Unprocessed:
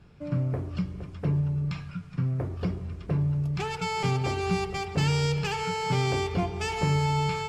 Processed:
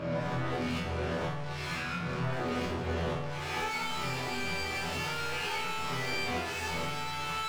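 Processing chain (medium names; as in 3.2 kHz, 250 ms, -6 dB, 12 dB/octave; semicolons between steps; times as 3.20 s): reverse spectral sustain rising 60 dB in 0.92 s; overdrive pedal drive 42 dB, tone 2.4 kHz, clips at -11.5 dBFS; chord resonator E2 fifth, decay 0.52 s; 2.22–2.92 s: crackle 430 per s -> 120 per s -51 dBFS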